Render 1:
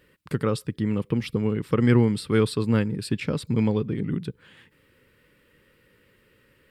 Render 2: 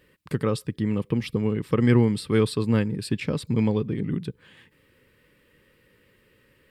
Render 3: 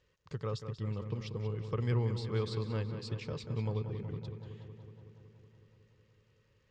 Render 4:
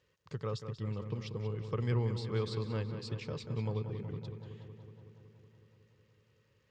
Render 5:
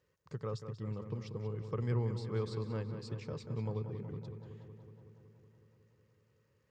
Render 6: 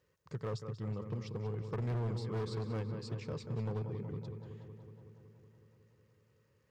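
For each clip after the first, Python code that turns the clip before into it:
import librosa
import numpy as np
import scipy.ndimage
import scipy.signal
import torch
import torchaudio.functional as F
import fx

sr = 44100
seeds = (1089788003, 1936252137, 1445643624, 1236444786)

y1 = fx.notch(x, sr, hz=1400.0, q=11.0)
y2 = fx.dmg_crackle(y1, sr, seeds[0], per_s=93.0, level_db=-55.0)
y2 = fx.curve_eq(y2, sr, hz=(100.0, 270.0, 430.0, 750.0, 1100.0, 1800.0, 6700.0, 9800.0), db=(0, -16, -6, -5, -3, -10, 1, -30))
y2 = fx.echo_filtered(y2, sr, ms=186, feedback_pct=75, hz=4000.0, wet_db=-9.0)
y2 = F.gain(torch.from_numpy(y2), -7.0).numpy()
y3 = scipy.signal.sosfilt(scipy.signal.butter(2, 77.0, 'highpass', fs=sr, output='sos'), y2)
y4 = fx.peak_eq(y3, sr, hz=3200.0, db=-8.0, octaves=1.2)
y4 = fx.hum_notches(y4, sr, base_hz=50, count=2)
y4 = F.gain(torch.from_numpy(y4), -1.5).numpy()
y5 = np.clip(y4, -10.0 ** (-34.0 / 20.0), 10.0 ** (-34.0 / 20.0))
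y5 = F.gain(torch.from_numpy(y5), 1.5).numpy()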